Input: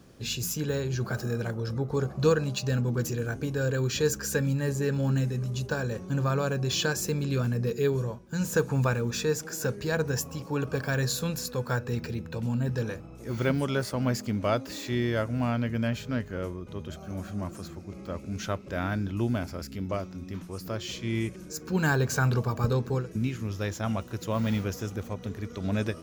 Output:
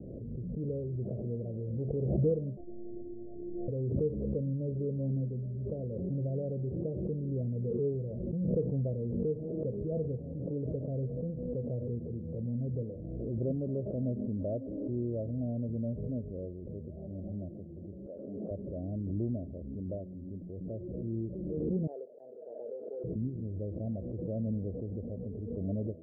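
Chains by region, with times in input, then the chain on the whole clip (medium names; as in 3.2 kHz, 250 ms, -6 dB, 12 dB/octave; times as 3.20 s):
2.57–3.68 s: transient shaper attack -10 dB, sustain +3 dB + hard clipper -26.5 dBFS + robot voice 349 Hz
18.06–18.51 s: high-pass 530 Hz + tilt EQ -1.5 dB/octave
21.87–23.04 s: high-pass 520 Hz 24 dB/octave + slow attack 490 ms
whole clip: steep low-pass 640 Hz 72 dB/octave; swell ahead of each attack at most 25 dB/s; trim -6.5 dB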